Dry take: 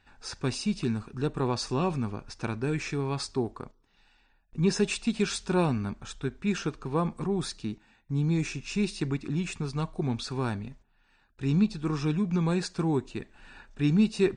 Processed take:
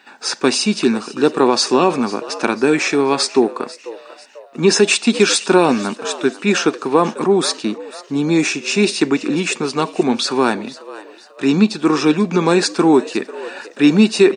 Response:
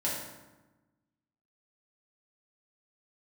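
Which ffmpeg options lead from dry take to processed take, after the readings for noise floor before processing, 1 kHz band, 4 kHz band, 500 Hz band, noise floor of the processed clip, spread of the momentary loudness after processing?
−66 dBFS, +16.5 dB, +17.5 dB, +16.5 dB, −43 dBFS, 13 LU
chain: -filter_complex "[0:a]highpass=frequency=250:width=0.5412,highpass=frequency=250:width=1.3066,asplit=4[link_01][link_02][link_03][link_04];[link_02]adelay=493,afreqshift=94,volume=-18dB[link_05];[link_03]adelay=986,afreqshift=188,volume=-25.7dB[link_06];[link_04]adelay=1479,afreqshift=282,volume=-33.5dB[link_07];[link_01][link_05][link_06][link_07]amix=inputs=4:normalize=0,alimiter=level_in=18.5dB:limit=-1dB:release=50:level=0:latency=1,volume=-1dB"

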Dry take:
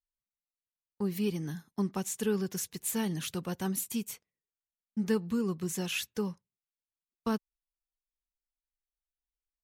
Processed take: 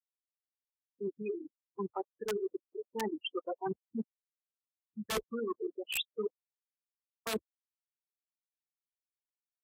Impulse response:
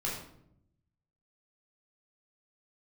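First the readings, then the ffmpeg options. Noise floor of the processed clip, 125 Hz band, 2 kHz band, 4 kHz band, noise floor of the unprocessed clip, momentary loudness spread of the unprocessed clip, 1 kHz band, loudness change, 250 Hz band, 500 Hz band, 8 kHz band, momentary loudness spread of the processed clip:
below −85 dBFS, −15.0 dB, −2.0 dB, 0.0 dB, below −85 dBFS, 7 LU, +0.5 dB, −5.0 dB, −9.5 dB, −1.0 dB, −10.5 dB, 8 LU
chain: -filter_complex "[0:a]acrossover=split=330 5500:gain=0.0708 1 0.224[link_01][link_02][link_03];[link_01][link_02][link_03]amix=inputs=3:normalize=0,bandreject=frequency=60:width_type=h:width=6,bandreject=frequency=120:width_type=h:width=6,bandreject=frequency=180:width_type=h:width=6,bandreject=frequency=240:width_type=h:width=6,bandreject=frequency=300:width_type=h:width=6,bandreject=frequency=360:width_type=h:width=6,bandreject=frequency=420:width_type=h:width=6,bandreject=frequency=480:width_type=h:width=6,bandreject=frequency=540:width_type=h:width=6,asplit=2[link_04][link_05];[link_05]adelay=498,lowpass=frequency=1900:poles=1,volume=-15.5dB,asplit=2[link_06][link_07];[link_07]adelay=498,lowpass=frequency=1900:poles=1,volume=0.33,asplit=2[link_08][link_09];[link_09]adelay=498,lowpass=frequency=1900:poles=1,volume=0.33[link_10];[link_04][link_06][link_08][link_10]amix=inputs=4:normalize=0,afftfilt=real='re*gte(hypot(re,im),0.0501)':imag='im*gte(hypot(re,im),0.0501)':win_size=1024:overlap=0.75,dynaudnorm=framelen=620:gausssize=7:maxgain=11.5dB,aeval=exprs='(mod(7.5*val(0)+1,2)-1)/7.5':channel_layout=same,adynamicequalizer=threshold=0.00794:dfrequency=290:dqfactor=0.71:tfrequency=290:tqfactor=0.71:attack=5:release=100:ratio=0.375:range=2.5:mode=cutabove:tftype=bell,highpass=frequency=43:width=0.5412,highpass=frequency=43:width=1.3066,areverse,acompressor=threshold=-39dB:ratio=12,areverse,volume=6.5dB" -ar 44100 -c:a libvorbis -b:a 48k

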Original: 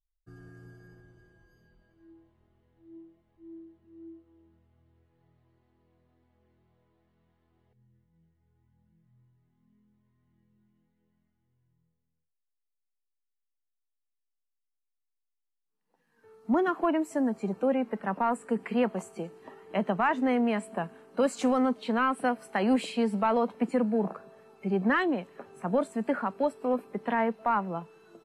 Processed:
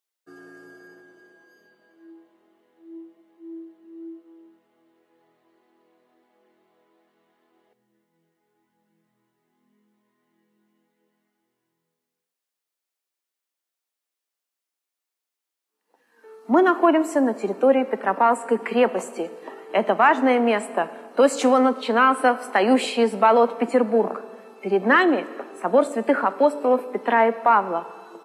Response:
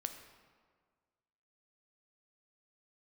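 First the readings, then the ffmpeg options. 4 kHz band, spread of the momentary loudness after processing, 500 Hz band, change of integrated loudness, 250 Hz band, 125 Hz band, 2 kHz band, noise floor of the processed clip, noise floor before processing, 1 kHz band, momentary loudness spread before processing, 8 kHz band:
+10.0 dB, 11 LU, +10.0 dB, +8.5 dB, +5.0 dB, can't be measured, +10.0 dB, below −85 dBFS, −82 dBFS, +10.0 dB, 11 LU, +10.0 dB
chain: -filter_complex "[0:a]highpass=frequency=280:width=0.5412,highpass=frequency=280:width=1.3066,asplit=2[link_01][link_02];[1:a]atrim=start_sample=2205[link_03];[link_02][link_03]afir=irnorm=-1:irlink=0,volume=-2.5dB[link_04];[link_01][link_04]amix=inputs=2:normalize=0,volume=6dB"

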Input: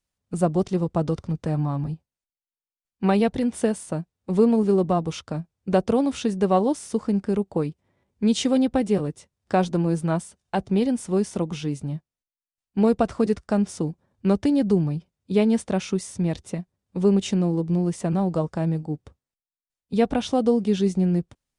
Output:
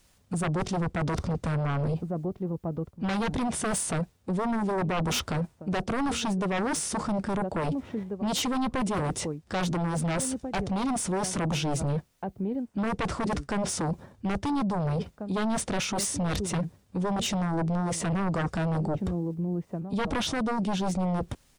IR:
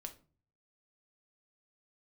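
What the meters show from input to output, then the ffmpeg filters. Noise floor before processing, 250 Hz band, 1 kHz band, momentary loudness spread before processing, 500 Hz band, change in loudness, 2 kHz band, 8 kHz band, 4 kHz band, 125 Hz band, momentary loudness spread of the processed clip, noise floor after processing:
below −85 dBFS, −6.5 dB, −1.0 dB, 11 LU, −8.5 dB, −5.5 dB, +3.5 dB, +6.0 dB, +2.0 dB, −3.0 dB, 5 LU, −63 dBFS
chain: -filter_complex "[0:a]asplit=2[link_01][link_02];[link_02]adelay=1691,volume=-27dB,highshelf=frequency=4000:gain=-38[link_03];[link_01][link_03]amix=inputs=2:normalize=0,areverse,acompressor=threshold=-30dB:ratio=12,areverse,aeval=exprs='0.0841*sin(PI/2*3.55*val(0)/0.0841)':channel_layout=same,alimiter=level_in=6.5dB:limit=-24dB:level=0:latency=1:release=20,volume=-6.5dB,volume=6.5dB"

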